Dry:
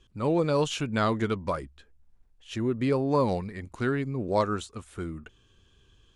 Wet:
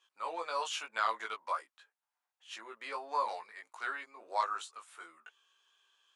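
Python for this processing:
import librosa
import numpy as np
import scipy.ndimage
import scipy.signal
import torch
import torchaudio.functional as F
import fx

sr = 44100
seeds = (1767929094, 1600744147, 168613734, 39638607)

y = fx.ladder_highpass(x, sr, hz=730.0, resonance_pct=30)
y = fx.doubler(y, sr, ms=18.0, db=-2.5)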